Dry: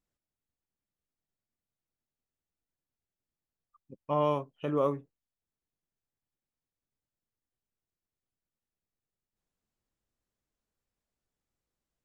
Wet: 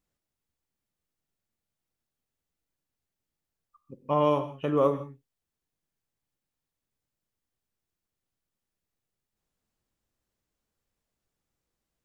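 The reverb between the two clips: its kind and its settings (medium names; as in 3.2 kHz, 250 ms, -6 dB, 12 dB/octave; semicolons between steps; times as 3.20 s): gated-style reverb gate 190 ms flat, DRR 10.5 dB; trim +4 dB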